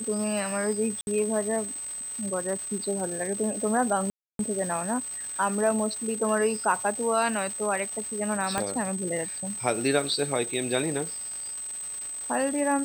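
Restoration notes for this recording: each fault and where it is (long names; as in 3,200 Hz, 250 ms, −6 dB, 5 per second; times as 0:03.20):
surface crackle 570 per second −34 dBFS
whistle 8,200 Hz −33 dBFS
0:01.01–0:01.07: drop-out 61 ms
0:04.10–0:04.39: drop-out 292 ms
0:08.58: click −12 dBFS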